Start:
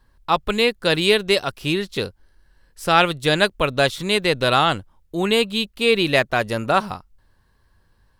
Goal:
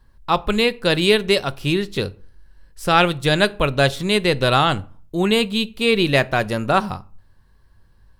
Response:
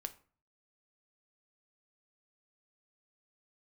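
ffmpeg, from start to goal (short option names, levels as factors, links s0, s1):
-filter_complex "[0:a]asplit=2[s0][s1];[1:a]atrim=start_sample=2205,lowshelf=f=280:g=11[s2];[s1][s2]afir=irnorm=-1:irlink=0,volume=0.944[s3];[s0][s3]amix=inputs=2:normalize=0,volume=0.596"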